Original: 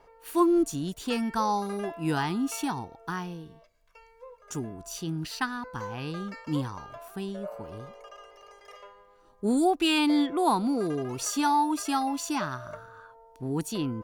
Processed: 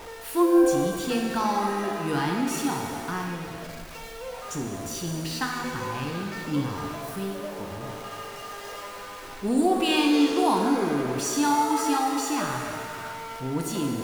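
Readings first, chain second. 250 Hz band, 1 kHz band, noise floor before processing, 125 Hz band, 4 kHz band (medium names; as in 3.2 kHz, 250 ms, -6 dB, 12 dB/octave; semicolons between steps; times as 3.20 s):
+3.0 dB, +2.5 dB, -59 dBFS, +2.0 dB, +3.0 dB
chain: jump at every zero crossing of -36 dBFS; pitch-shifted reverb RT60 2 s, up +7 st, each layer -8 dB, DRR 1 dB; trim -1.5 dB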